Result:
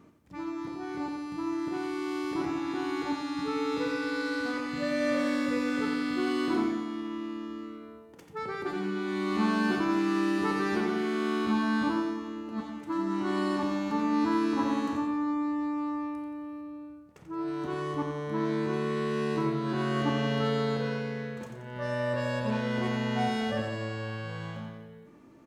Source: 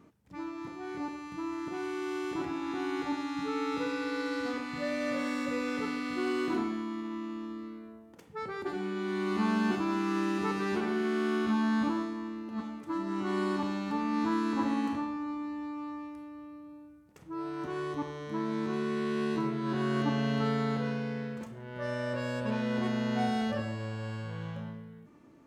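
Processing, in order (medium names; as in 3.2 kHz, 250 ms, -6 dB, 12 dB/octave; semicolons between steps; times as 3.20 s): 16.61–17.48 s: treble shelf 5.7 kHz -6 dB; feedback delay 88 ms, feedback 45%, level -7.5 dB; trim +2 dB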